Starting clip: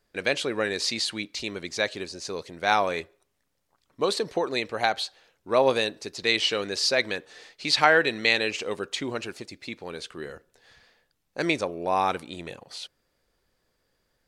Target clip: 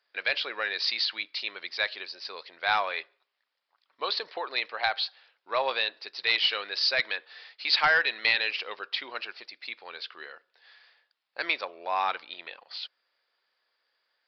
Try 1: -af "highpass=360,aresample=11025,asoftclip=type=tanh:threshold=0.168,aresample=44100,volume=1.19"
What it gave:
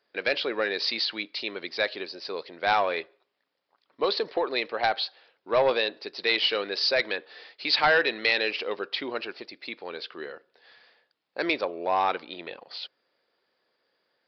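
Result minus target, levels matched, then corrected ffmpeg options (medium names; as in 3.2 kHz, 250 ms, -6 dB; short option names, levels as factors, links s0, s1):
500 Hz band +8.0 dB
-af "highpass=980,aresample=11025,asoftclip=type=tanh:threshold=0.168,aresample=44100,volume=1.19"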